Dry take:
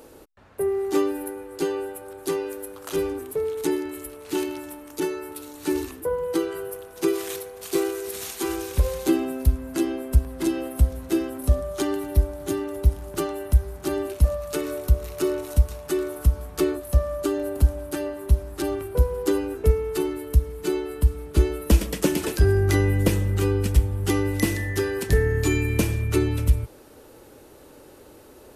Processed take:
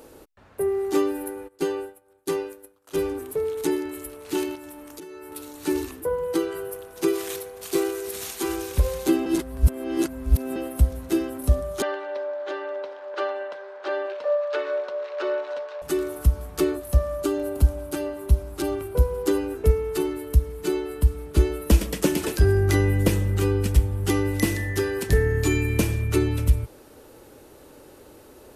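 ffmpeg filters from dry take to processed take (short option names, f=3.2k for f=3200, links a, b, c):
-filter_complex "[0:a]asplit=3[a][b][c];[a]afade=t=out:st=1.47:d=0.02[d];[b]agate=range=-33dB:threshold=-27dB:ratio=3:release=100:detection=peak,afade=t=in:st=1.47:d=0.02,afade=t=out:st=2.96:d=0.02[e];[c]afade=t=in:st=2.96:d=0.02[f];[d][e][f]amix=inputs=3:normalize=0,asettb=1/sr,asplit=3[g][h][i];[g]atrim=end=4.554[j];[h]atrim=start=4.55:end=5.32,asetpts=PTS-STARTPTS,afade=t=in:d=0.004:c=qsin,afade=t=out:st=0.766:d=0.004:c=qsin,acompressor=threshold=-36dB:ratio=20:attack=3.2:release=140:knee=1:detection=peak[k];[i]atrim=start=5.316[l];[j][k]acrossfade=d=0.004:c1=hsin:c2=qsin[m];[m][l]acrossfade=d=0.004:c1=qsin:c2=hsin,asettb=1/sr,asplit=3[n][o][p];[n]atrim=end=11.824[q];[o]atrim=start=11.82:end=15.82,asetpts=PTS-STARTPTS,afade=t=in:d=0.004:c=qsin,afade=t=out:st=3.996:d=0.004:c=qsin,highpass=f=480:w=0.5412,highpass=f=480:w=1.3066,equalizer=f=550:t=q:w=4:g=10,equalizer=f=1k:t=q:w=4:g=5,equalizer=f=1.6k:t=q:w=4:g=8,lowpass=f=4.1k:w=0.5412,lowpass=f=4.1k:w=1.3066[r];[p]atrim=start=15.816[s];[q][r]acrossfade=d=0.004:c1=hsin:c2=qsin[t];[t][s]acrossfade=d=0.004:c1=qsin:c2=hsin,asettb=1/sr,asplit=3[u][v][w];[u]atrim=end=17.234[x];[v]atrim=start=17.23:end=19.23,asetpts=PTS-STARTPTS,afade=t=in:d=0.004:c=qsin,afade=t=out:st=1.996:d=0.004:c=qsin,bandreject=f=1.8k:w=12[y];[w]atrim=start=19.226[z];[x][y]acrossfade=d=0.004:c1=hsin:c2=qsin[aa];[aa][z]acrossfade=d=0.004:c1=qsin:c2=hsin,asplit=3[ab][ac][ad];[ab]atrim=end=9.262[ae];[ac]atrim=start=9.258:end=10.562,asetpts=PTS-STARTPTS,areverse[af];[ad]atrim=start=10.558[ag];[ae][af]acrossfade=d=0.004:c1=hsin:c2=hsin[ah];[ah][ag]acrossfade=d=0.004:c1=hsin:c2=hsin"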